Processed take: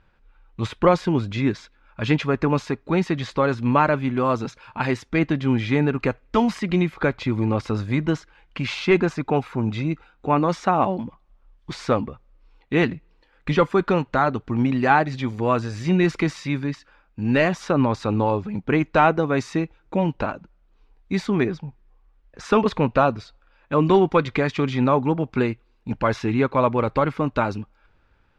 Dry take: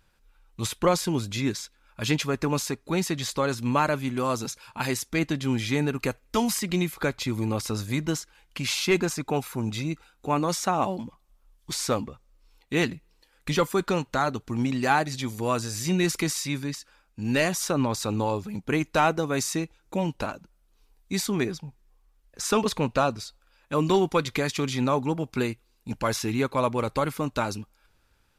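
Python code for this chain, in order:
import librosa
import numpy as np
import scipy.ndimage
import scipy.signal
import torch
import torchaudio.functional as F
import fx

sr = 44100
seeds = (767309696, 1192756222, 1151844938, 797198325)

y = scipy.signal.sosfilt(scipy.signal.butter(2, 2400.0, 'lowpass', fs=sr, output='sos'), x)
y = F.gain(torch.from_numpy(y), 5.5).numpy()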